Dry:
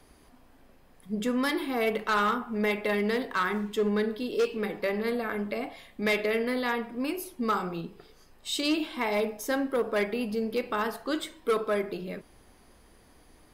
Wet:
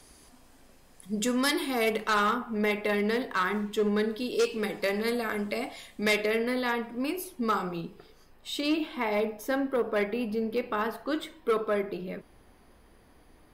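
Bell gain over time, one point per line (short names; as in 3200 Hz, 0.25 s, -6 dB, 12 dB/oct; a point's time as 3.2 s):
bell 7500 Hz 1.7 oct
1.69 s +12 dB
2.38 s +0.5 dB
3.7 s +0.5 dB
4.67 s +12 dB
5.9 s +12 dB
6.4 s +1 dB
7.86 s +1 dB
8.53 s -7.5 dB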